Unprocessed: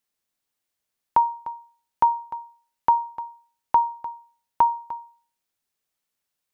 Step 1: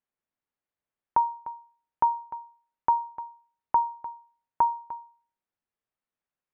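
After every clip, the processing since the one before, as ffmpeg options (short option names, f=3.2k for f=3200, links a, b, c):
-af "lowpass=1.9k,volume=-4dB"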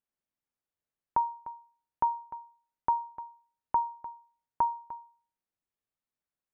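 -af "lowshelf=f=320:g=5,volume=-5dB"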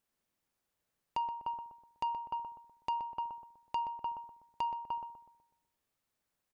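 -filter_complex "[0:a]acompressor=threshold=-37dB:ratio=5,asoftclip=type=tanh:threshold=-36.5dB,asplit=2[a][b];[b]adelay=124,lowpass=f=960:p=1,volume=-6dB,asplit=2[c][d];[d]adelay=124,lowpass=f=960:p=1,volume=0.51,asplit=2[e][f];[f]adelay=124,lowpass=f=960:p=1,volume=0.51,asplit=2[g][h];[h]adelay=124,lowpass=f=960:p=1,volume=0.51,asplit=2[i][j];[j]adelay=124,lowpass=f=960:p=1,volume=0.51,asplit=2[k][l];[l]adelay=124,lowpass=f=960:p=1,volume=0.51[m];[c][e][g][i][k][m]amix=inputs=6:normalize=0[n];[a][n]amix=inputs=2:normalize=0,volume=8dB"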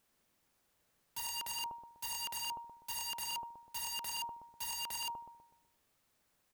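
-af "aeval=exprs='(mod(158*val(0)+1,2)-1)/158':c=same,volume=8.5dB"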